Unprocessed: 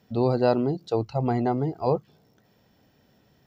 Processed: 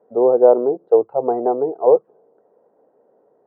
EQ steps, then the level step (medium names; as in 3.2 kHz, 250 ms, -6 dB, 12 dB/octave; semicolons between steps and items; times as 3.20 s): resonant high-pass 460 Hz, resonance Q 3.5; low-pass 1.1 kHz 24 dB/octave; +3.0 dB